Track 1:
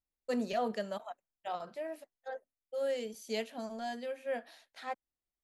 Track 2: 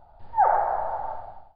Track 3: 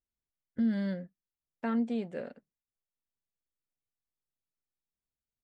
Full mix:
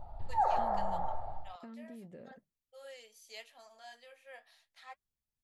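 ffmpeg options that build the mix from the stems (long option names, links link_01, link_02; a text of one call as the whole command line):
ffmpeg -i stem1.wav -i stem2.wav -i stem3.wav -filter_complex "[0:a]highpass=1000,flanger=delay=5.2:depth=9.4:regen=-51:speed=0.8:shape=triangular,volume=-3dB[link_01];[1:a]lowshelf=frequency=140:gain=9.5,acompressor=threshold=-35dB:ratio=2,volume=0.5dB[link_02];[2:a]lowshelf=frequency=270:gain=10.5,alimiter=level_in=4.5dB:limit=-24dB:level=0:latency=1,volume=-4.5dB,acompressor=threshold=-45dB:ratio=3,volume=-5dB[link_03];[link_01][link_02][link_03]amix=inputs=3:normalize=0,bandreject=frequency=1500:width=9" out.wav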